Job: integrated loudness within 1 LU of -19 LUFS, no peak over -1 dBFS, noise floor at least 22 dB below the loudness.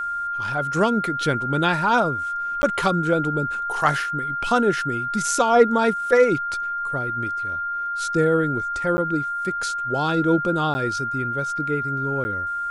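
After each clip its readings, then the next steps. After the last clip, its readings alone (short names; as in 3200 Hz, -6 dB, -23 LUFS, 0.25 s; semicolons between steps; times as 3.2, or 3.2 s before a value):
dropouts 4; longest dropout 10 ms; steady tone 1400 Hz; tone level -24 dBFS; loudness -22.0 LUFS; peak -4.5 dBFS; loudness target -19.0 LUFS
-> interpolate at 2.62/8.97/10.74/12.24, 10 ms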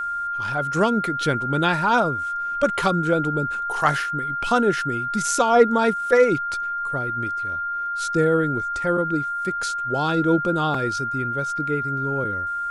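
dropouts 0; steady tone 1400 Hz; tone level -24 dBFS
-> notch 1400 Hz, Q 30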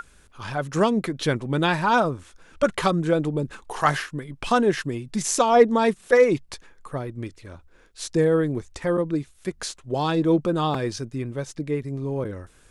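steady tone none; loudness -23.5 LUFS; peak -4.0 dBFS; loudness target -19.0 LUFS
-> gain +4.5 dB; limiter -1 dBFS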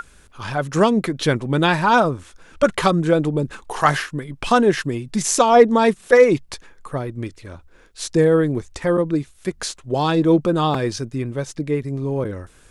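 loudness -19.0 LUFS; peak -1.0 dBFS; noise floor -50 dBFS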